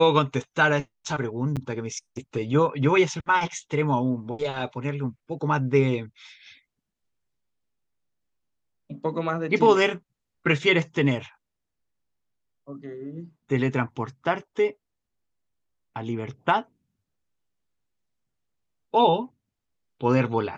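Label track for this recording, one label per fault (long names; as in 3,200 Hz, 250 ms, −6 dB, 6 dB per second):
1.560000	1.570000	drop-out 7.6 ms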